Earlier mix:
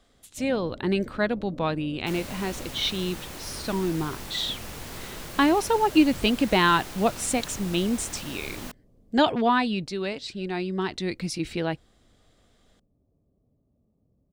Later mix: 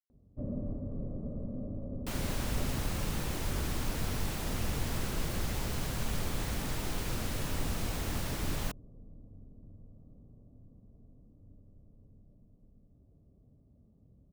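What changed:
speech: muted; master: add bass shelf 240 Hz +9.5 dB

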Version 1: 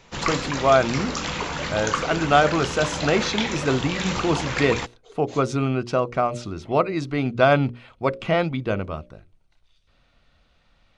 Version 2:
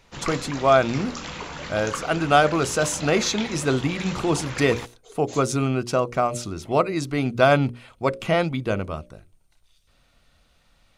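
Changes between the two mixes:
speech: remove low-pass 4.4 kHz 12 dB/octave; background -6.5 dB

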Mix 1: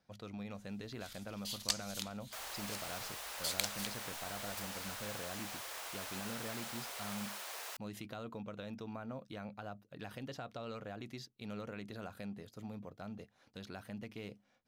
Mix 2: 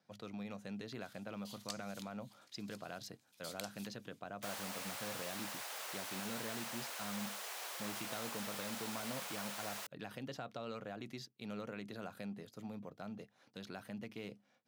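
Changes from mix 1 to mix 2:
first sound -11.5 dB; second sound: entry +2.10 s; master: add high-pass 120 Hz 24 dB/octave

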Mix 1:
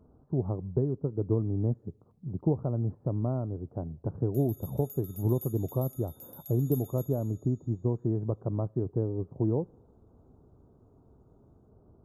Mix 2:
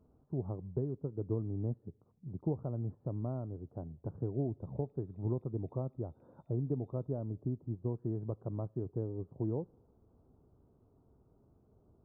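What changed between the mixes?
speech -7.5 dB; background: add cascade formant filter e

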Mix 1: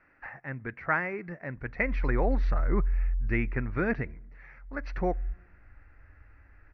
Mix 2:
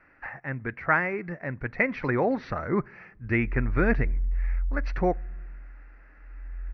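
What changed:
speech +4.5 dB; background: entry +1.60 s

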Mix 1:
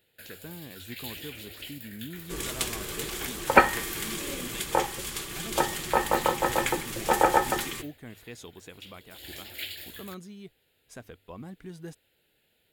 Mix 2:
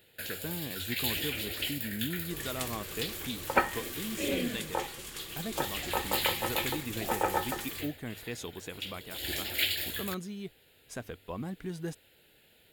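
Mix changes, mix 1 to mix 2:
speech +4.5 dB; first sound +8.0 dB; second sound -8.5 dB

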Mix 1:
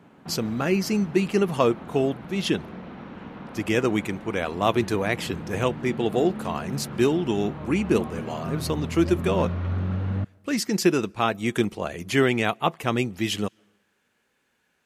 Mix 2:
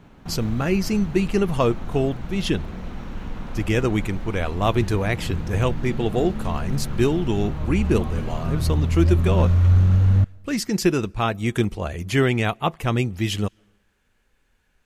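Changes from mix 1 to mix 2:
background: remove distance through air 250 m; master: remove high-pass 180 Hz 12 dB/octave

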